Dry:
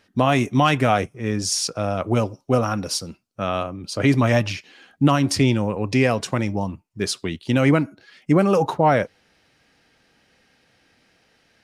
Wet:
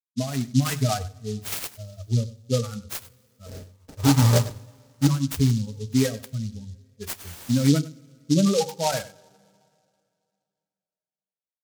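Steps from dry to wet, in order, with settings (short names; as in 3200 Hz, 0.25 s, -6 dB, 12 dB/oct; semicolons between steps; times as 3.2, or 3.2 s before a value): per-bin expansion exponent 3; low shelf 280 Hz +9 dB; notches 50/100/150 Hz; in parallel at +1 dB: limiter -14 dBFS, peak gain reduction 9.5 dB; 3.46–5.07 on the sum: sample-rate reducer 1100 Hz, jitter 20%; notch comb 350 Hz; 7.2–7.69 requantised 6-bit, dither triangular; rotary speaker horn 0.65 Hz; echo 98 ms -17 dB; on a send at -12 dB: reverb, pre-delay 3 ms; on the sum: noise-modulated delay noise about 4900 Hz, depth 0.093 ms; gain -4.5 dB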